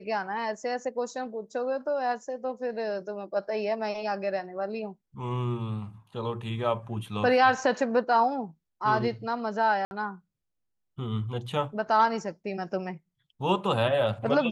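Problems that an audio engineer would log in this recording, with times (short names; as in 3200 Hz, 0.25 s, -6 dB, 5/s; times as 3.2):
9.85–9.91 gap 61 ms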